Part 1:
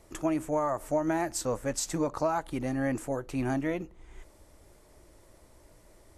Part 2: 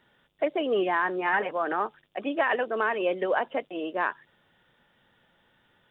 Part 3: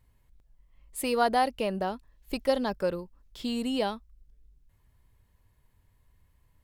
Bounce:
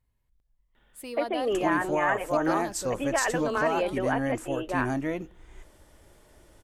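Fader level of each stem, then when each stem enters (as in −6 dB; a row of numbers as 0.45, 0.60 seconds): +0.5, −2.0, −10.0 decibels; 1.40, 0.75, 0.00 seconds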